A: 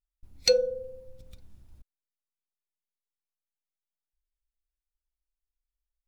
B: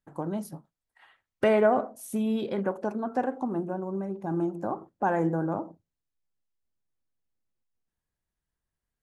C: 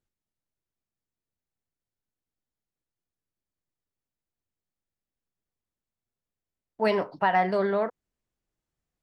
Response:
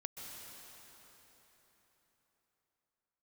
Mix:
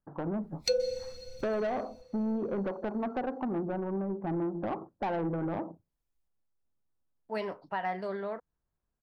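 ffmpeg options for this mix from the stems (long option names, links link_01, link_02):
-filter_complex "[0:a]adelay=200,volume=-1dB,asplit=2[link_01][link_02];[link_02]volume=-12dB[link_03];[1:a]lowpass=frequency=1400:width=0.5412,lowpass=frequency=1400:width=1.3066,acompressor=threshold=-27dB:ratio=4,asoftclip=type=tanh:threshold=-29.5dB,volume=2.5dB,asplit=2[link_04][link_05];[2:a]adelay=500,volume=-10.5dB[link_06];[link_05]apad=whole_len=276841[link_07];[link_01][link_07]sidechaincompress=threshold=-49dB:ratio=8:attack=6.8:release=319[link_08];[3:a]atrim=start_sample=2205[link_09];[link_03][link_09]afir=irnorm=-1:irlink=0[link_10];[link_08][link_04][link_06][link_10]amix=inputs=4:normalize=0"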